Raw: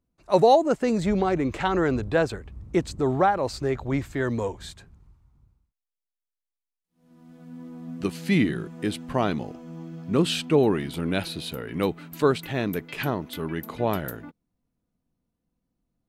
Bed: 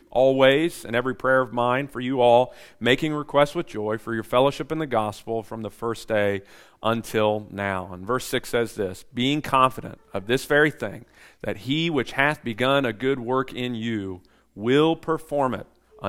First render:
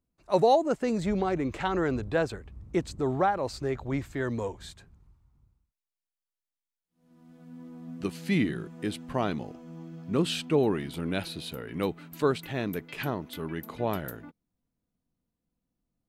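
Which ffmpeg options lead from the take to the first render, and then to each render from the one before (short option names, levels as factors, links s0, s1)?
-af "volume=0.596"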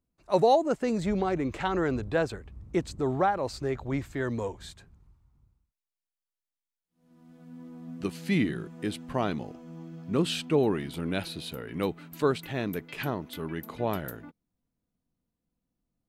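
-af anull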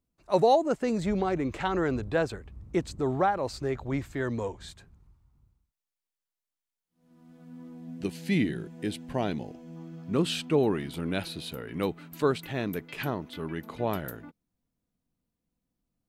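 -filter_complex "[0:a]asettb=1/sr,asplit=3[s0][s1][s2];[s0]atrim=end=4.284[s3];[s1]atrim=start=4.28:end=4.68,asetpts=PTS-STARTPTS,afade=t=in:d=0.004:c=qsin,afade=t=out:st=0.396:d=0.004:c=qsin,lowpass=9700[s4];[s2]atrim=start=4.676[s5];[s3][s4]acrossfade=d=0.004:c1=hsin:c2=qsin[s6];[s6][s5]acrossfade=d=0.004:c1=qsin:c2=hsin,asettb=1/sr,asplit=3[s7][s8][s9];[s7]atrim=end=7.734[s10];[s8]atrim=start=7.73:end=9.76,asetpts=PTS-STARTPTS,afade=t=in:d=0.004:c=qsin,afade=t=out:st=2.026:d=0.004:c=qsin,equalizer=f=1200:w=3.5:g=-10.5[s11];[s9]atrim=start=9.756[s12];[s10][s11]acrossfade=d=0.004:c1=hsin:c2=qsin[s13];[s13][s12]acrossfade=d=0.004:c1=qsin:c2=hsin,asettb=1/sr,asplit=3[s14][s15][s16];[s14]atrim=end=13.184[s17];[s15]atrim=start=13.18:end=13.79,asetpts=PTS-STARTPTS,afade=t=in:d=0.004:c=qsin,afade=t=out:st=0.606:d=0.004:c=qsin,acrossover=split=5400[s18][s19];[s19]acompressor=threshold=0.00158:ratio=4:attack=1:release=60[s20];[s18][s20]amix=inputs=2:normalize=0[s21];[s16]atrim=start=13.786[s22];[s17][s21]acrossfade=d=0.004:c1=hsin:c2=qsin[s23];[s23][s22]acrossfade=d=0.004:c1=qsin:c2=hsin"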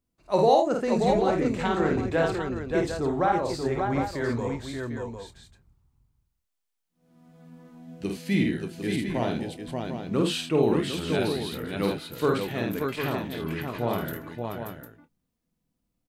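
-filter_complex "[0:a]asplit=2[s0][s1];[s1]adelay=26,volume=0.237[s2];[s0][s2]amix=inputs=2:normalize=0,aecho=1:1:50|76|573|581|751:0.668|0.188|0.141|0.596|0.376"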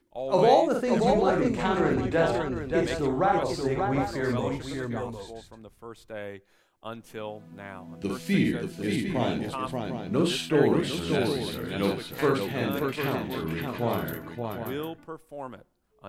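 -filter_complex "[1:a]volume=0.168[s0];[0:a][s0]amix=inputs=2:normalize=0"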